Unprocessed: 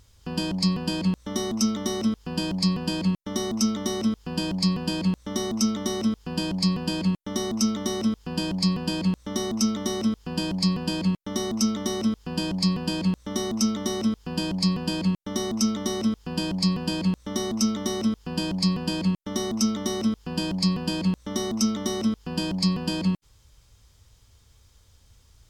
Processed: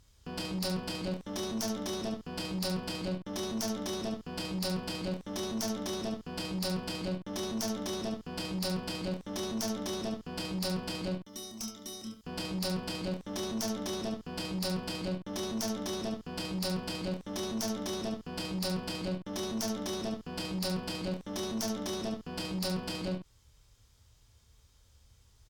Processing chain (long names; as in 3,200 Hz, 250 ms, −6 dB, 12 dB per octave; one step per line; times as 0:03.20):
0:11.19–0:12.24: first-order pre-emphasis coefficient 0.8
harmonic generator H 3 −7 dB, 7 −22 dB, 8 −25 dB, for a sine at −10 dBFS
ambience of single reflections 27 ms −5 dB, 71 ms −7.5 dB
level −6.5 dB